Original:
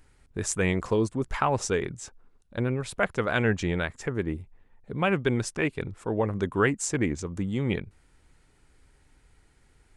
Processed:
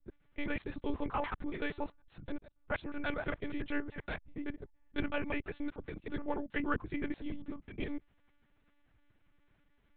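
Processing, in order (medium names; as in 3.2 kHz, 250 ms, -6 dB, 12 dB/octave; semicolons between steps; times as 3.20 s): slices played last to first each 95 ms, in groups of 4; monotone LPC vocoder at 8 kHz 290 Hz; trim -9 dB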